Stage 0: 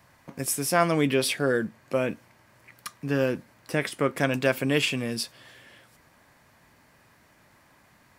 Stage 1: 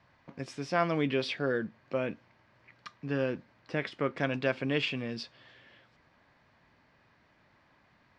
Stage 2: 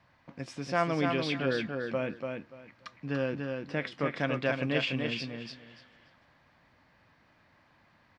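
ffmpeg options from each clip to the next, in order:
-af "lowpass=f=4.7k:w=0.5412,lowpass=f=4.7k:w=1.3066,volume=-6dB"
-af "equalizer=f=400:t=o:w=0.21:g=-5.5,aecho=1:1:290|580|870:0.596|0.119|0.0238"

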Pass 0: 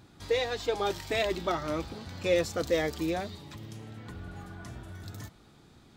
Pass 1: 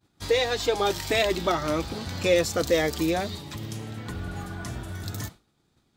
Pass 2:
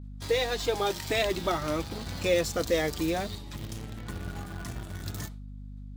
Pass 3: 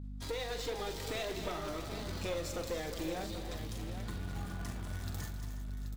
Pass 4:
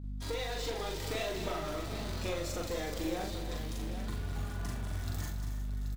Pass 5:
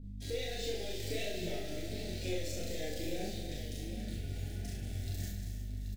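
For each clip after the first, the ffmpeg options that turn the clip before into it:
-filter_complex "[0:a]agate=range=-33dB:threshold=-43dB:ratio=3:detection=peak,highshelf=f=4.7k:g=5.5,asplit=2[a][b];[b]acompressor=threshold=-35dB:ratio=6,volume=0dB[c];[a][c]amix=inputs=2:normalize=0,volume=2.5dB"
-filter_complex "[0:a]asplit=2[a][b];[b]acrusher=bits=4:mix=0:aa=0.000001,volume=-9dB[c];[a][c]amix=inputs=2:normalize=0,aeval=exprs='val(0)+0.02*(sin(2*PI*50*n/s)+sin(2*PI*2*50*n/s)/2+sin(2*PI*3*50*n/s)/3+sin(2*PI*4*50*n/s)/4+sin(2*PI*5*50*n/s)/5)':c=same,volume=-6.5dB"
-filter_complex "[0:a]acompressor=threshold=-38dB:ratio=2.5,aeval=exprs='clip(val(0),-1,0.0168)':c=same,asplit=2[a][b];[b]aecho=0:1:44|196|282|362|628|781:0.355|0.266|0.266|0.224|0.168|0.316[c];[a][c]amix=inputs=2:normalize=0,volume=-1.5dB"
-filter_complex "[0:a]asplit=2[a][b];[b]adelay=41,volume=-2.5dB[c];[a][c]amix=inputs=2:normalize=0"
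-filter_complex "[0:a]flanger=delay=4.1:depth=4.4:regen=58:speed=1.5:shape=triangular,asuperstop=centerf=1100:order=4:qfactor=0.85,asplit=2[a][b];[b]aecho=0:1:30|63|99.3|139.2|183.2:0.631|0.398|0.251|0.158|0.1[c];[a][c]amix=inputs=2:normalize=0,volume=1dB"

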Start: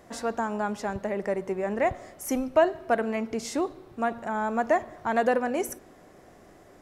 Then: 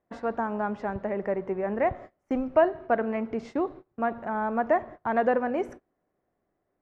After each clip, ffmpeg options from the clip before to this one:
-af "lowpass=2k,agate=range=-25dB:threshold=-41dB:ratio=16:detection=peak"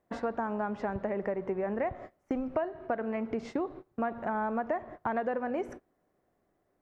-af "acompressor=threshold=-32dB:ratio=6,volume=3dB"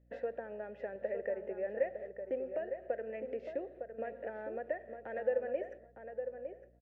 -filter_complex "[0:a]asplit=3[a][b][c];[a]bandpass=f=530:t=q:w=8,volume=0dB[d];[b]bandpass=f=1.84k:t=q:w=8,volume=-6dB[e];[c]bandpass=f=2.48k:t=q:w=8,volume=-9dB[f];[d][e][f]amix=inputs=3:normalize=0,asplit=2[g][h];[h]adelay=908,lowpass=f=1.5k:p=1,volume=-7dB,asplit=2[i][j];[j]adelay=908,lowpass=f=1.5k:p=1,volume=0.2,asplit=2[k][l];[l]adelay=908,lowpass=f=1.5k:p=1,volume=0.2[m];[g][i][k][m]amix=inputs=4:normalize=0,aeval=exprs='val(0)+0.000355*(sin(2*PI*60*n/s)+sin(2*PI*2*60*n/s)/2+sin(2*PI*3*60*n/s)/3+sin(2*PI*4*60*n/s)/4+sin(2*PI*5*60*n/s)/5)':c=same,volume=4dB"

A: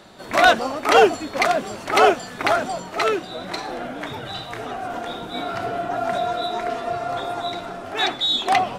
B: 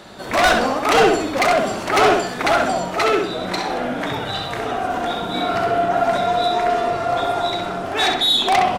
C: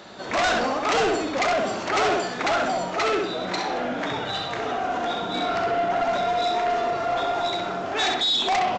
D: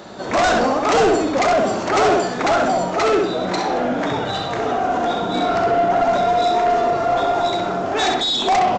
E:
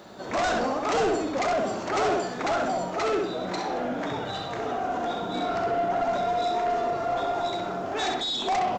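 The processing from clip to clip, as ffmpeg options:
-filter_complex "[0:a]asoftclip=type=tanh:threshold=-17.5dB,asplit=2[a][b];[b]adelay=65,lowpass=f=4.7k:p=1,volume=-3.5dB,asplit=2[c][d];[d]adelay=65,lowpass=f=4.7k:p=1,volume=0.42,asplit=2[e][f];[f]adelay=65,lowpass=f=4.7k:p=1,volume=0.42,asplit=2[g][h];[h]adelay=65,lowpass=f=4.7k:p=1,volume=0.42,asplit=2[i][j];[j]adelay=65,lowpass=f=4.7k:p=1,volume=0.42[k];[a][c][e][g][i][k]amix=inputs=6:normalize=0,volume=5.5dB"
-af "lowshelf=f=110:g=-10.5,aresample=16000,asoftclip=type=tanh:threshold=-16dB,aresample=44100,volume=-2dB"
-af "equalizer=f=2.8k:w=0.5:g=-7.5,volume=8.5dB"
-af "acrusher=bits=9:mix=0:aa=0.000001,volume=-9dB"

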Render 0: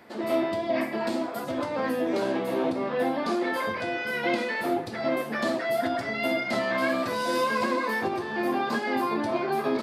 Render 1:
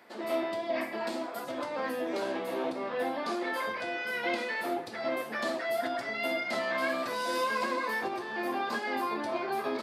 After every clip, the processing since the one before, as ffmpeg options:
-af "highpass=f=460:p=1,volume=-3dB"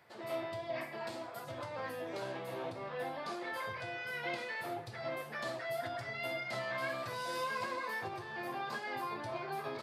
-af "lowshelf=f=170:t=q:w=3:g=11.5,volume=-6.5dB"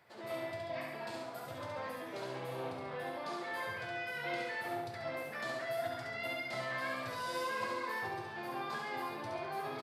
-af "aecho=1:1:69|138|207|276|345|414|483:0.668|0.341|0.174|0.0887|0.0452|0.0231|0.0118,volume=-2dB"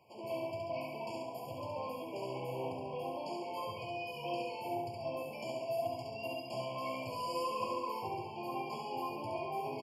-af "afftfilt=real='re*eq(mod(floor(b*sr/1024/1100),2),0)':imag='im*eq(mod(floor(b*sr/1024/1100),2),0)':win_size=1024:overlap=0.75,volume=2dB"

